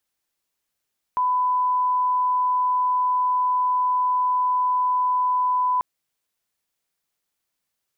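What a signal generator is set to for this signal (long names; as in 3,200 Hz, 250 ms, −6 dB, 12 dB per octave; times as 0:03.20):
line-up tone −18 dBFS 4.64 s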